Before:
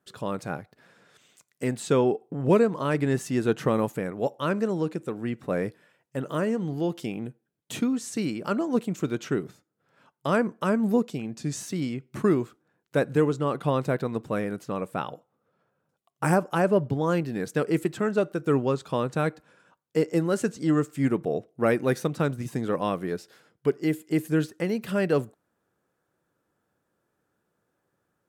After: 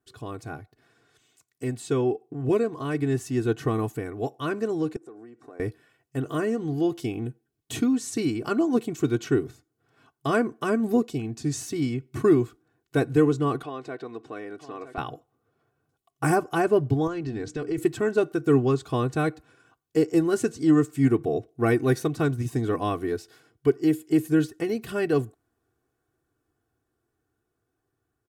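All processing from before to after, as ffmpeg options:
ffmpeg -i in.wav -filter_complex "[0:a]asettb=1/sr,asplit=3[link_01][link_02][link_03];[link_01]atrim=end=4.964[link_04];[link_02]atrim=start=4.96:end=5.6,asetpts=PTS-STARTPTS,afade=type=in:duration=0.004:curve=qsin,afade=type=out:start_time=0.636:duration=0.004:curve=qsin,equalizer=frequency=3000:width=1:gain=-13.5,acompressor=threshold=-36dB:ratio=16:attack=3.2:release=140:knee=1:detection=peak,highpass=370,lowpass=6800[link_05];[link_03]atrim=start=5.596[link_06];[link_04][link_05]acrossfade=duration=0.004:curve1=hsin:curve2=qsin[link_07];[link_07][link_06]acrossfade=duration=0.004:curve1=qsin:curve2=hsin,asettb=1/sr,asplit=3[link_08][link_09][link_10];[link_08]atrim=end=13.634[link_11];[link_09]atrim=start=13.63:end=14.98,asetpts=PTS-STARTPTS,afade=type=in:duration=0.004:curve=qsin,afade=type=out:start_time=1.346:duration=0.004:curve=qsin,acompressor=threshold=-35dB:ratio=2:attack=3.2:release=140:knee=1:detection=peak,highpass=330,lowpass=5200,aecho=1:1:961:0.251,atrim=end_sample=59535[link_12];[link_10]atrim=start=14.976[link_13];[link_11][link_12]acrossfade=duration=0.004:curve1=hsin:curve2=qsin[link_14];[link_14][link_13]acrossfade=duration=0.004:curve1=qsin:curve2=hsin,asettb=1/sr,asplit=3[link_15][link_16][link_17];[link_15]atrim=end=17.074[link_18];[link_16]atrim=start=17.07:end=17.78,asetpts=PTS-STARTPTS,afade=type=in:duration=0.004:curve=qsin,afade=type=out:start_time=0.706:duration=0.004:curve=qsin,lowpass=frequency=7200:width=0.5412,lowpass=frequency=7200:width=1.3066,bandreject=frequency=60:width_type=h:width=6,bandreject=frequency=120:width_type=h:width=6,bandreject=frequency=180:width_type=h:width=6,bandreject=frequency=240:width_type=h:width=6,bandreject=frequency=300:width_type=h:width=6,acompressor=threshold=-29dB:ratio=4:attack=3.2:release=140:knee=1:detection=peak[link_19];[link_17]atrim=start=17.776[link_20];[link_18][link_19]acrossfade=duration=0.004:curve1=hsin:curve2=qsin[link_21];[link_21][link_20]acrossfade=duration=0.004:curve1=qsin:curve2=hsin,bass=frequency=250:gain=10,treble=frequency=4000:gain=2,aecho=1:1:2.7:0.85,dynaudnorm=framelen=850:gausssize=9:maxgain=11.5dB,volume=-8dB" out.wav

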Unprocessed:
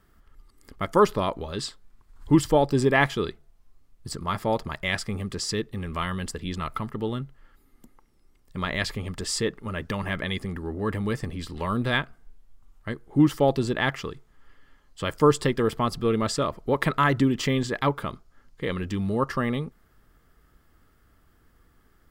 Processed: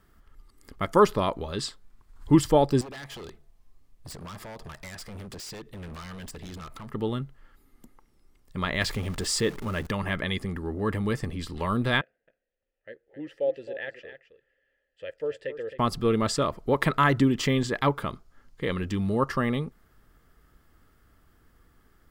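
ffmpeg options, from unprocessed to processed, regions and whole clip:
ffmpeg -i in.wav -filter_complex "[0:a]asettb=1/sr,asplit=3[link_01][link_02][link_03];[link_01]atrim=end=2.814[link_04];[link_02]atrim=start=2.81:end=6.9,asetpts=PTS-STARTPTS,afade=type=in:duration=0.004:curve=qsin,afade=type=out:start_time=4.086:duration=0.004:curve=qsin,bandreject=frequency=1400:width=9.3,acompressor=threshold=-33dB:ratio=8:attack=3.2:release=140:knee=1:detection=peak,aeval=exprs='0.0178*(abs(mod(val(0)/0.0178+3,4)-2)-1)':channel_layout=same[link_05];[link_03]atrim=start=6.896[link_06];[link_04][link_05]acrossfade=duration=0.004:curve1=hsin:curve2=qsin[link_07];[link_07][link_06]acrossfade=duration=0.004:curve1=qsin:curve2=hsin,asettb=1/sr,asplit=3[link_08][link_09][link_10];[link_08]atrim=end=8.814[link_11];[link_09]atrim=start=8.81:end=9.87,asetpts=PTS-STARTPTS,afade=type=in:duration=0.004:curve=qsin,afade=type=out:start_time=1.056:duration=0.004:curve=qsin,aeval=exprs='val(0)+0.5*0.0119*sgn(val(0))':channel_layout=same,acompressor=mode=upward:threshold=-29dB:ratio=2.5:attack=3.2:release=140:knee=2.83:detection=peak[link_12];[link_10]atrim=start=9.866[link_13];[link_11][link_12]acrossfade=duration=0.004:curve1=hsin:curve2=qsin[link_14];[link_14][link_13]acrossfade=duration=0.004:curve1=qsin:curve2=hsin,asettb=1/sr,asplit=3[link_15][link_16][link_17];[link_15]atrim=end=12.014[link_18];[link_16]atrim=start=12.01:end=15.79,asetpts=PTS-STARTPTS,afade=type=in:duration=0.004:curve=qsin,afade=type=out:start_time=3.776:duration=0.004:curve=qsin,asubboost=boost=7.5:cutoff=82,asplit=3[link_19][link_20][link_21];[link_19]bandpass=frequency=530:width_type=q:width=8,volume=0dB[link_22];[link_20]bandpass=frequency=1840:width_type=q:width=8,volume=-6dB[link_23];[link_21]bandpass=frequency=2480:width_type=q:width=8,volume=-9dB[link_24];[link_22][link_23][link_24]amix=inputs=3:normalize=0,aecho=1:1:265:0.266,atrim=end_sample=166698[link_25];[link_17]atrim=start=15.786[link_26];[link_18][link_25]acrossfade=duration=0.004:curve1=hsin:curve2=qsin[link_27];[link_27][link_26]acrossfade=duration=0.004:curve1=qsin:curve2=hsin" out.wav

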